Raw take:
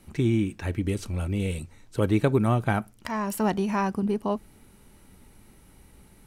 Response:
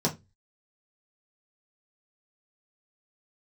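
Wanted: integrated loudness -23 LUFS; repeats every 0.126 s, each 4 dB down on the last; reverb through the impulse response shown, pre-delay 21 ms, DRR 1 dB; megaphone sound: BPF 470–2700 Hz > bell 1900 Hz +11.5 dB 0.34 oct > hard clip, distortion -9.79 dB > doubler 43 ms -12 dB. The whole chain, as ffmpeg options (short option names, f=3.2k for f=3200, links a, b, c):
-filter_complex "[0:a]aecho=1:1:126|252|378|504|630|756|882|1008|1134:0.631|0.398|0.25|0.158|0.0994|0.0626|0.0394|0.0249|0.0157,asplit=2[a][b];[1:a]atrim=start_sample=2205,adelay=21[c];[b][c]afir=irnorm=-1:irlink=0,volume=-10.5dB[d];[a][d]amix=inputs=2:normalize=0,highpass=470,lowpass=2.7k,equalizer=f=1.9k:t=o:w=0.34:g=11.5,asoftclip=type=hard:threshold=-22dB,asplit=2[e][f];[f]adelay=43,volume=-12dB[g];[e][g]amix=inputs=2:normalize=0,volume=4.5dB"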